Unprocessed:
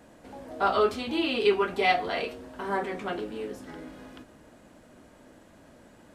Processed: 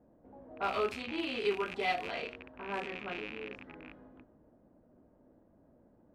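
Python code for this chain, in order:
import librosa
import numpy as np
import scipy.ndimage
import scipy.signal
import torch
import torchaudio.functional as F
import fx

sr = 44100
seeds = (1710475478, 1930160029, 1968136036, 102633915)

y = fx.rattle_buzz(x, sr, strikes_db=-44.0, level_db=-20.0)
y = fx.env_lowpass(y, sr, base_hz=610.0, full_db=-22.0)
y = F.gain(torch.from_numpy(y), -9.0).numpy()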